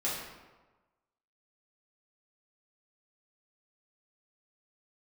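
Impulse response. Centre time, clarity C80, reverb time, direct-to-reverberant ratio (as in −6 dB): 69 ms, 4.0 dB, 1.2 s, −8.5 dB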